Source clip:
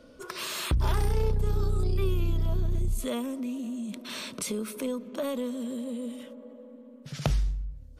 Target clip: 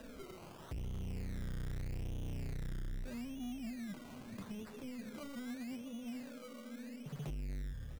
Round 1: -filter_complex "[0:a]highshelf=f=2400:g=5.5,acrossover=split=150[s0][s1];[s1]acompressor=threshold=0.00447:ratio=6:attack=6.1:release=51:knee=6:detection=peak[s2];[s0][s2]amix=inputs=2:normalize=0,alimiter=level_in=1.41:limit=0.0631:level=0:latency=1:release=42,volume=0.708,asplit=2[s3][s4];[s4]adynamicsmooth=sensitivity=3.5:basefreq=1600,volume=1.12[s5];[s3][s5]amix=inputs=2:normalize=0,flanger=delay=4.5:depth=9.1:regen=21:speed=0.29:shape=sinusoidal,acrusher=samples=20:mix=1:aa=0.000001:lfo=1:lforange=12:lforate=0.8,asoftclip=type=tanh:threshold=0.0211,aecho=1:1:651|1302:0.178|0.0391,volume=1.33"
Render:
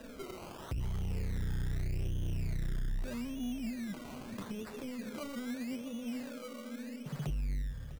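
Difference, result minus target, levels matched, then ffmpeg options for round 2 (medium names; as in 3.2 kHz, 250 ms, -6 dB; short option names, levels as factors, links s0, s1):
compression: peak gain reduction -6.5 dB; saturation: distortion -5 dB
-filter_complex "[0:a]highshelf=f=2400:g=5.5,acrossover=split=150[s0][s1];[s1]acompressor=threshold=0.00178:ratio=6:attack=6.1:release=51:knee=6:detection=peak[s2];[s0][s2]amix=inputs=2:normalize=0,alimiter=level_in=1.41:limit=0.0631:level=0:latency=1:release=42,volume=0.708,asplit=2[s3][s4];[s4]adynamicsmooth=sensitivity=3.5:basefreq=1600,volume=1.12[s5];[s3][s5]amix=inputs=2:normalize=0,flanger=delay=4.5:depth=9.1:regen=21:speed=0.29:shape=sinusoidal,acrusher=samples=20:mix=1:aa=0.000001:lfo=1:lforange=12:lforate=0.8,asoftclip=type=tanh:threshold=0.00841,aecho=1:1:651|1302:0.178|0.0391,volume=1.33"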